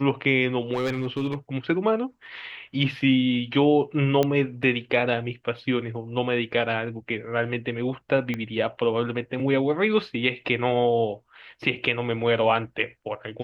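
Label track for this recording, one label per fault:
0.740000	1.350000	clipping −21 dBFS
4.230000	4.230000	click −10 dBFS
8.340000	8.340000	click −16 dBFS

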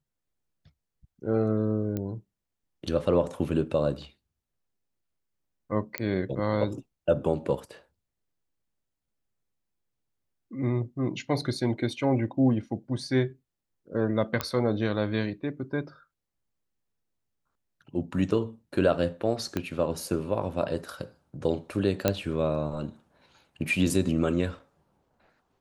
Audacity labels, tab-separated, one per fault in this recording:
1.970000	1.970000	click −19 dBFS
5.980000	5.980000	click −13 dBFS
14.410000	14.410000	click −12 dBFS
19.570000	19.570000	click −15 dBFS
22.080000	22.080000	click −8 dBFS

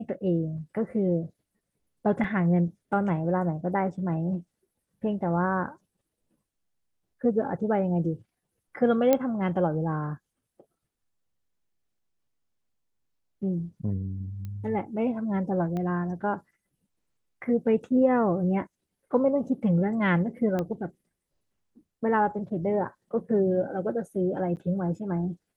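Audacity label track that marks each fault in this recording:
2.240000	2.240000	drop-out 2.9 ms
9.130000	9.130000	click −9 dBFS
14.450000	14.450000	click −26 dBFS
15.770000	15.770000	click −22 dBFS
20.590000	20.590000	click −17 dBFS
24.560000	24.570000	drop-out 9.3 ms

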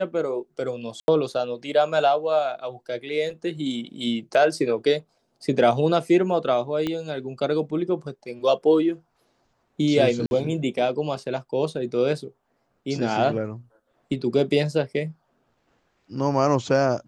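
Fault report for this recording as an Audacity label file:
1.000000	1.080000	drop-out 81 ms
6.870000	6.870000	click −14 dBFS
10.260000	10.310000	drop-out 51 ms

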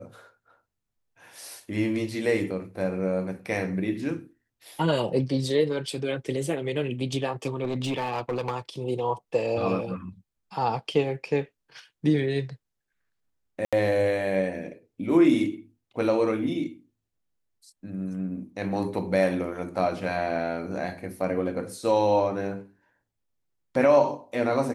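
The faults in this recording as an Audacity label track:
7.640000	8.560000	clipping −23.5 dBFS
13.650000	13.730000	drop-out 76 ms

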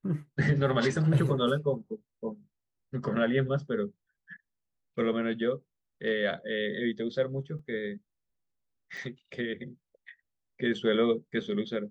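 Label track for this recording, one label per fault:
7.590000	7.590000	drop-out 4.1 ms
8.970000	8.970000	drop-out 4.4 ms

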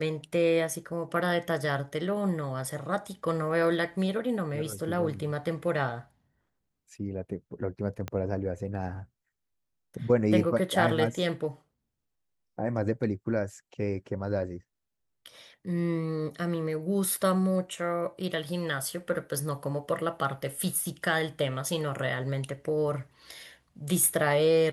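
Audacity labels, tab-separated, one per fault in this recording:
8.080000	8.080000	click −19 dBFS

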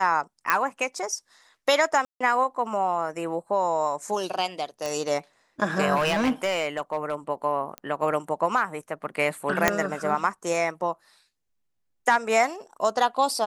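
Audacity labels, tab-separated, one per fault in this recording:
0.500000	0.500000	click −6 dBFS
2.050000	2.210000	drop-out 155 ms
4.860000	4.860000	click
5.950000	7.150000	clipping −19 dBFS
7.780000	7.780000	click −19 dBFS
9.680000	9.680000	click −3 dBFS

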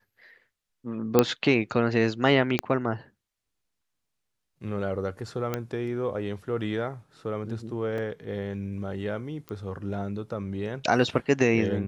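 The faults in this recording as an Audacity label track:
1.190000	1.190000	click −4 dBFS
2.590000	2.590000	click −9 dBFS
5.540000	5.540000	click −14 dBFS
7.980000	7.980000	drop-out 3.1 ms
9.490000	9.490000	click −22 dBFS

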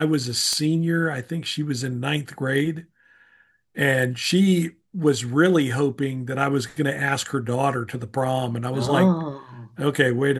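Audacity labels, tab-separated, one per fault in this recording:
0.530000	0.530000	click −12 dBFS

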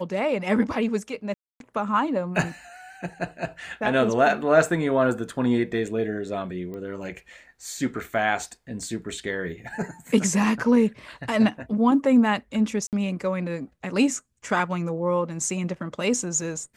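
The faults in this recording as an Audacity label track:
1.340000	1.600000	drop-out 262 ms
6.740000	6.740000	click −26 dBFS
12.870000	12.930000	drop-out 58 ms

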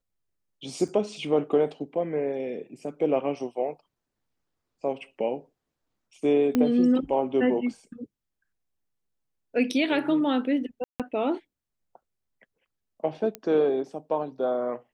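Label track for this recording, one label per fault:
0.880000	0.880000	drop-out 4.8 ms
6.550000	6.550000	click −12 dBFS
10.840000	11.000000	drop-out 157 ms
13.350000	13.350000	click −17 dBFS

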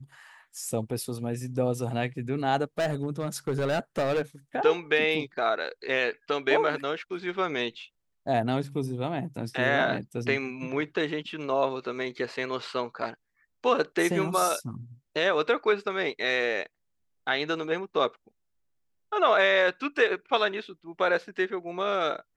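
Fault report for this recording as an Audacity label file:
2.790000	4.220000	clipping −22.5 dBFS

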